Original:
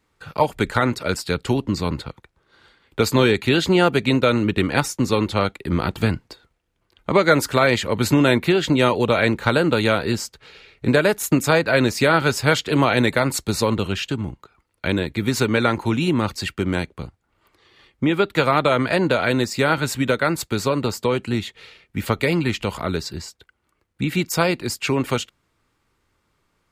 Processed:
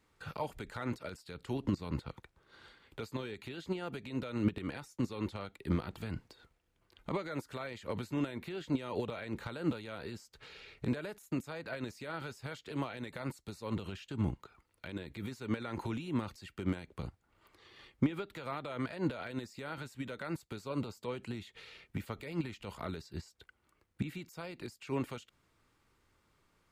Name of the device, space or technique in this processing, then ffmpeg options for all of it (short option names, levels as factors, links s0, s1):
de-esser from a sidechain: -filter_complex "[0:a]asettb=1/sr,asplit=3[s0][s1][s2];[s0]atrim=end=20.614[s3];[s1]atrim=start=20.61:end=21.01,asetpts=PTS-STARTPTS,afade=t=in:d=0.004:c=qsin,afade=t=out:st=0.396:d=0.004:c=qsin,bandreject=f=1800:w=5.9[s4];[s2]atrim=start=21.006[s5];[s3][s4]acrossfade=d=0.004:c1=hsin:c2=qsin[s6];[s6][s5]acrossfade=d=0.004:c1=qsin:c2=hsin,asplit=2[s7][s8];[s8]highpass=5300,apad=whole_len=1177976[s9];[s7][s9]sidechaincompress=threshold=0.002:ratio=6:attack=1.4:release=66,volume=0.631"